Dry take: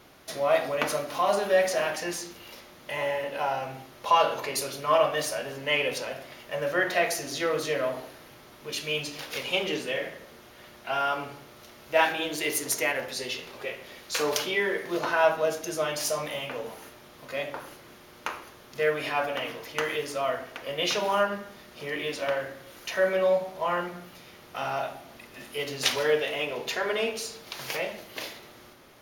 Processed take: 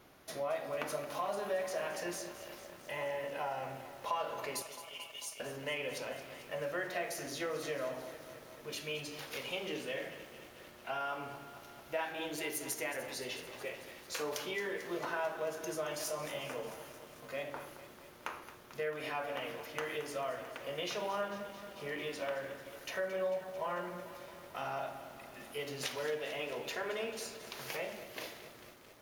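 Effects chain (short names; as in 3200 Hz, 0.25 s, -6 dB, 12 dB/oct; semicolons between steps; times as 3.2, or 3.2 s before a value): 4.62–5.4 rippled Chebyshev high-pass 2100 Hz, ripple 6 dB; compressor 3:1, threshold -29 dBFS, peak gain reduction 10 dB; bell 4200 Hz -3.5 dB 1.7 oct; lo-fi delay 0.222 s, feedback 80%, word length 8-bit, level -12.5 dB; gain -6 dB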